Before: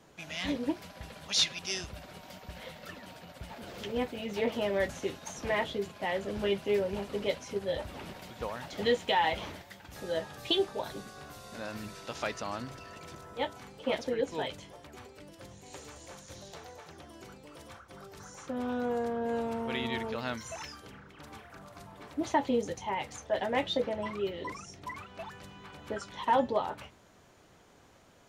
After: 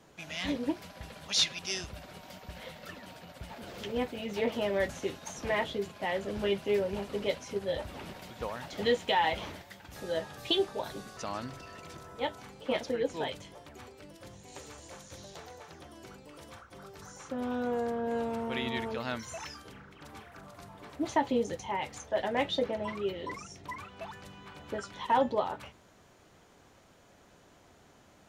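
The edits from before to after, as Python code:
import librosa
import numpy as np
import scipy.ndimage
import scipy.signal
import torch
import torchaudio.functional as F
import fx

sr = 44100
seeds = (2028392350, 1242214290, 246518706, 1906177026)

y = fx.edit(x, sr, fx.cut(start_s=11.17, length_s=1.18), tone=tone)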